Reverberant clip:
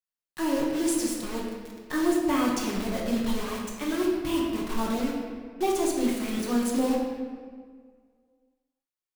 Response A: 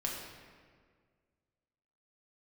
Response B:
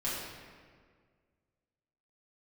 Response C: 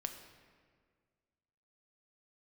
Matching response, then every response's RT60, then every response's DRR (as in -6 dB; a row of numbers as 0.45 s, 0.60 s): A; 1.8 s, 1.8 s, 1.8 s; -3.0 dB, -9.5 dB, 5.0 dB